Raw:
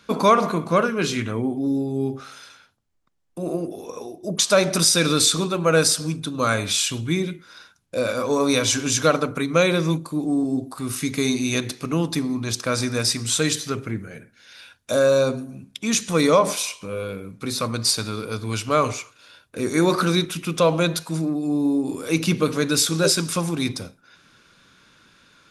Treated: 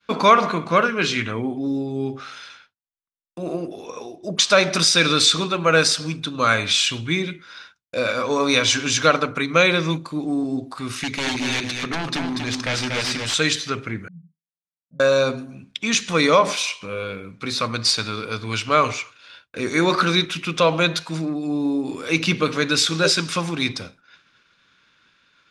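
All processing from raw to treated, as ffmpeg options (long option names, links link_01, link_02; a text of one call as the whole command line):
ffmpeg -i in.wav -filter_complex "[0:a]asettb=1/sr,asplit=3[link_01][link_02][link_03];[link_01]atrim=end=11.034[link_04];[link_02]atrim=start=11.03:end=13.34,asetpts=PTS-STARTPTS,afade=type=in:duration=0.004:curve=qsin,afade=type=out:start_time=2.306:duration=0.004:curve=qsin,aeval=exprs='0.0944*(abs(mod(val(0)/0.0944+3,4)-2)-1)':channel_layout=same,aecho=1:1:238:0.596,atrim=end_sample=101871[link_05];[link_03]atrim=start=13.336[link_06];[link_04][link_05]acrossfade=duration=0.004:curve1=hsin:curve2=qsin[link_07];[link_07][link_06]acrossfade=duration=0.004:curve1=qsin:curve2=hsin,asettb=1/sr,asplit=3[link_08][link_09][link_10];[link_08]atrim=end=14.084[link_11];[link_09]atrim=start=14.08:end=15,asetpts=PTS-STARTPTS,afade=type=in:duration=0.004:curve=qsin,afade=type=out:start_time=0.916:duration=0.004:curve=qsin,asuperpass=centerf=170:order=4:qfactor=6.5,acontrast=52[link_12];[link_10]atrim=start=14.996[link_13];[link_11][link_12]acrossfade=duration=0.004:curve1=hsin:curve2=qsin[link_14];[link_14][link_13]acrossfade=duration=0.004:curve1=qsin:curve2=hsin,agate=range=-33dB:threshold=-47dB:ratio=3:detection=peak,lowpass=6500,equalizer=frequency=2400:width_type=o:width=2.6:gain=9,volume=-2dB" out.wav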